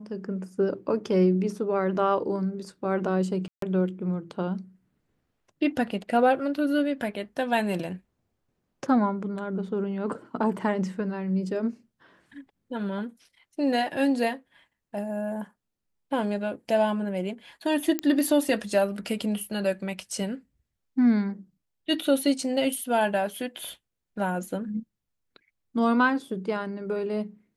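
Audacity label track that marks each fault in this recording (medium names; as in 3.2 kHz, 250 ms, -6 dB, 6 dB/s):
3.480000	3.620000	dropout 143 ms
17.990000	17.990000	pop -11 dBFS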